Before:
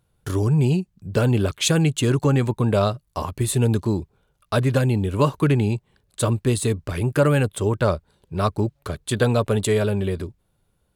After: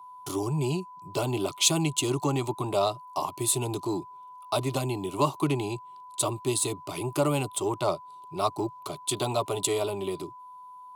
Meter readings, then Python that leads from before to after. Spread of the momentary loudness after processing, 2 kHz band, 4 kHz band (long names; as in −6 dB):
10 LU, −9.0 dB, −1.0 dB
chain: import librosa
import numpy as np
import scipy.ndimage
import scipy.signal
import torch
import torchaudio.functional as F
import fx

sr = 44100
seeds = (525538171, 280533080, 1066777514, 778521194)

p1 = 10.0 ** (-20.5 / 20.0) * np.tanh(x / 10.0 ** (-20.5 / 20.0))
p2 = x + (p1 * librosa.db_to_amplitude(-9.0))
p3 = p2 + 10.0 ** (-41.0 / 20.0) * np.sin(2.0 * np.pi * 1000.0 * np.arange(len(p2)) / sr)
p4 = scipy.signal.sosfilt(scipy.signal.butter(2, 150.0, 'highpass', fs=sr, output='sos'), p3)
p5 = fx.low_shelf(p4, sr, hz=270.0, db=-11.0)
y = fx.fixed_phaser(p5, sr, hz=330.0, stages=8)